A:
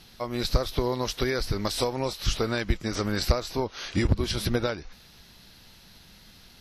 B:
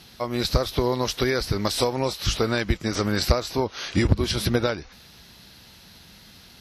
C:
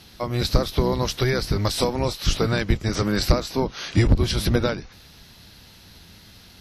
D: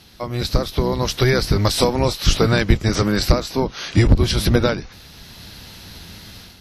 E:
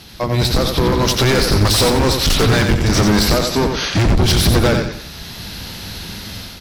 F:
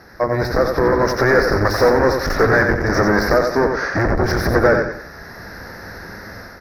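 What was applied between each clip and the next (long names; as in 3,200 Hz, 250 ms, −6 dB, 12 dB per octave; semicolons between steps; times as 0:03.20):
high-pass filter 51 Hz; level +4 dB
sub-octave generator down 1 octave, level +1 dB
automatic gain control gain up to 9 dB
gain into a clipping stage and back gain 20 dB; repeating echo 90 ms, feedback 35%, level −5.5 dB; level +8 dB
drawn EQ curve 190 Hz 0 dB, 530 Hz +12 dB, 940 Hz +7 dB, 1,800 Hz +14 dB, 3,100 Hz −24 dB, 5,400 Hz +1 dB, 7,800 Hz −22 dB, 12,000 Hz −4 dB; level −7 dB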